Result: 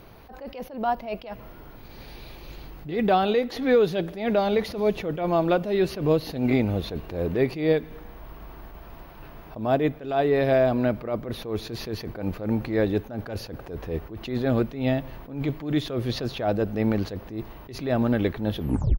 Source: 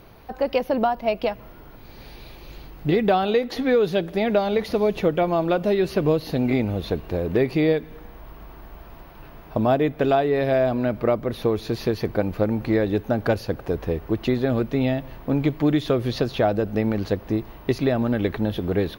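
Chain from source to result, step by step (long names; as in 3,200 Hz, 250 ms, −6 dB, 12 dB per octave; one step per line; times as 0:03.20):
turntable brake at the end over 0.39 s
level that may rise only so fast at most 110 dB per second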